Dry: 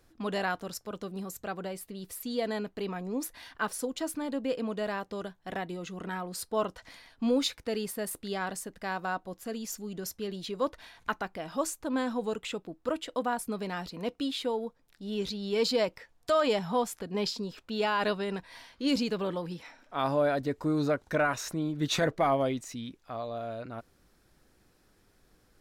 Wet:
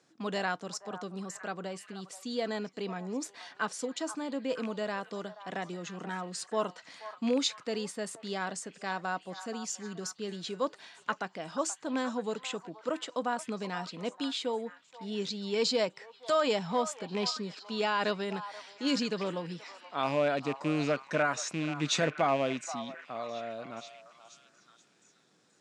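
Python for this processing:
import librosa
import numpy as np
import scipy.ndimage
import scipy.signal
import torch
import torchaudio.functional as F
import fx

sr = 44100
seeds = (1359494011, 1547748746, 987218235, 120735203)

y = fx.rattle_buzz(x, sr, strikes_db=-34.0, level_db=-29.0)
y = scipy.signal.sosfilt(scipy.signal.ellip(3, 1.0, 40, [150.0, 7500.0], 'bandpass', fs=sr, output='sos'), y)
y = fx.high_shelf(y, sr, hz=4400.0, db=6.5)
y = fx.echo_stepped(y, sr, ms=479, hz=950.0, octaves=0.7, feedback_pct=70, wet_db=-10)
y = y * librosa.db_to_amplitude(-1.5)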